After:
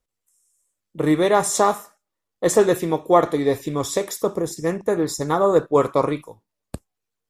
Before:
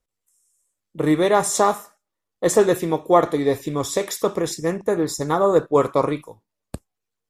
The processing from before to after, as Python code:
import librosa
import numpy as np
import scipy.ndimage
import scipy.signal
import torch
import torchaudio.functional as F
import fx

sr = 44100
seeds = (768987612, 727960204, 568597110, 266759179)

y = fx.peak_eq(x, sr, hz=2600.0, db=fx.line((3.98, -3.5), (4.56, -14.5)), octaves=1.9, at=(3.98, 4.56), fade=0.02)